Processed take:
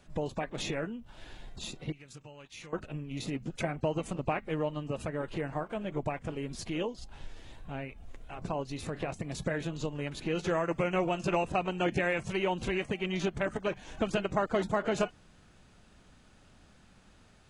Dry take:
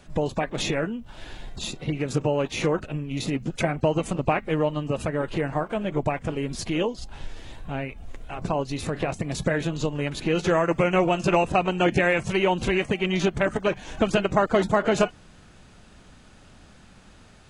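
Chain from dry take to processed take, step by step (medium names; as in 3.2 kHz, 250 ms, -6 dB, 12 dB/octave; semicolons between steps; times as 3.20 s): 1.92–2.73 s: amplifier tone stack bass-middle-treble 5-5-5; trim -8.5 dB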